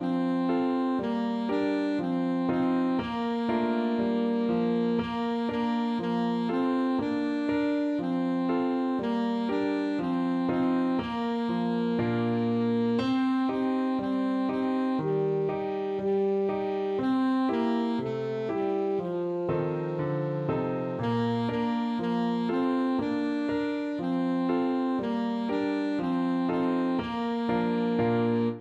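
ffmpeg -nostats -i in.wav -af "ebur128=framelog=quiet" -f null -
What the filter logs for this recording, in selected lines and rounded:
Integrated loudness:
  I:         -28.0 LUFS
  Threshold: -38.0 LUFS
Loudness range:
  LRA:         1.5 LU
  Threshold: -48.1 LUFS
  LRA low:   -28.8 LUFS
  LRA high:  -27.4 LUFS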